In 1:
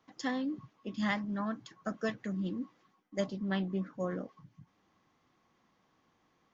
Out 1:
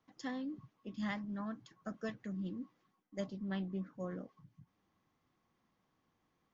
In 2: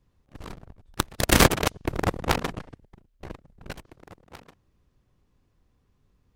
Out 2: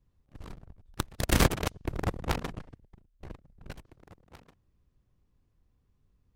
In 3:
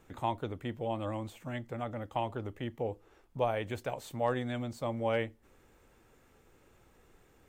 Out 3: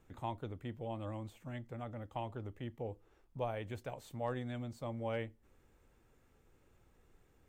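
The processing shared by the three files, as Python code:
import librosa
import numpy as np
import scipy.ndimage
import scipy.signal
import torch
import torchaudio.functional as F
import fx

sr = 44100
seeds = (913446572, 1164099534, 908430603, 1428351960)

y = fx.low_shelf(x, sr, hz=180.0, db=7.0)
y = y * librosa.db_to_amplitude(-8.5)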